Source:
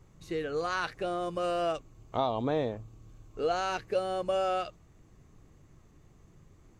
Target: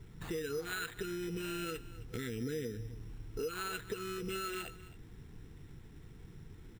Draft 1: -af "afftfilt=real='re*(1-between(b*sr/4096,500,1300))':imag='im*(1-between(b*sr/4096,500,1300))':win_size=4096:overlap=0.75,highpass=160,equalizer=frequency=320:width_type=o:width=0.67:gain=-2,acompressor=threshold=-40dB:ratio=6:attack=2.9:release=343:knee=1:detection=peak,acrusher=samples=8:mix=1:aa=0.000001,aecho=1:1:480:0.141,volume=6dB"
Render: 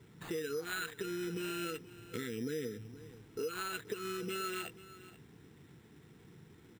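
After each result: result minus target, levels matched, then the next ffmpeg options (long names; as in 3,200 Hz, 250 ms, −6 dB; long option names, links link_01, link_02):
echo 217 ms late; 125 Hz band −4.5 dB
-af "afftfilt=real='re*(1-between(b*sr/4096,500,1300))':imag='im*(1-between(b*sr/4096,500,1300))':win_size=4096:overlap=0.75,highpass=160,equalizer=frequency=320:width_type=o:width=0.67:gain=-2,acompressor=threshold=-40dB:ratio=6:attack=2.9:release=343:knee=1:detection=peak,acrusher=samples=8:mix=1:aa=0.000001,aecho=1:1:263:0.141,volume=6dB"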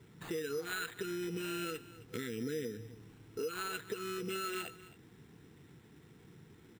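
125 Hz band −4.5 dB
-af "afftfilt=real='re*(1-between(b*sr/4096,500,1300))':imag='im*(1-between(b*sr/4096,500,1300))':win_size=4096:overlap=0.75,equalizer=frequency=320:width_type=o:width=0.67:gain=-2,acompressor=threshold=-40dB:ratio=6:attack=2.9:release=343:knee=1:detection=peak,acrusher=samples=8:mix=1:aa=0.000001,aecho=1:1:263:0.141,volume=6dB"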